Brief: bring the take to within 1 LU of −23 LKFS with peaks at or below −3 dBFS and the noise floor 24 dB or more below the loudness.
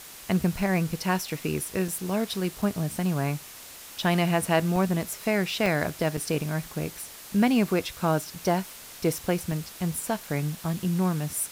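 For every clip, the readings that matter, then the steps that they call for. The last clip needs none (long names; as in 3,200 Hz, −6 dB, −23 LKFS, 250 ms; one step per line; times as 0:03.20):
number of dropouts 7; longest dropout 3.1 ms; background noise floor −45 dBFS; target noise floor −52 dBFS; integrated loudness −27.5 LKFS; sample peak −9.0 dBFS; target loudness −23.0 LKFS
→ repair the gap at 0:01.30/0:01.88/0:02.62/0:04.76/0:05.66/0:06.17/0:09.52, 3.1 ms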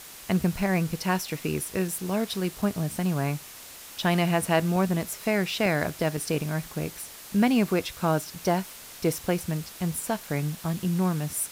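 number of dropouts 0; background noise floor −45 dBFS; target noise floor −52 dBFS
→ broadband denoise 7 dB, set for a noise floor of −45 dBFS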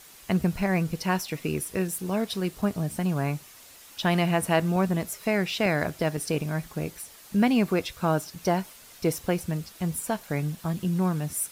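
background noise floor −50 dBFS; target noise floor −52 dBFS
→ broadband denoise 6 dB, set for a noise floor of −50 dBFS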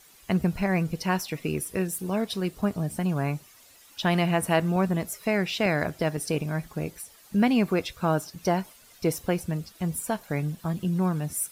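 background noise floor −54 dBFS; integrated loudness −27.5 LKFS; sample peak −9.0 dBFS; target loudness −23.0 LKFS
→ level +4.5 dB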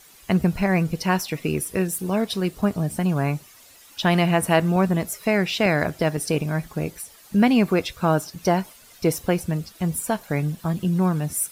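integrated loudness −23.0 LKFS; sample peak −4.5 dBFS; background noise floor −50 dBFS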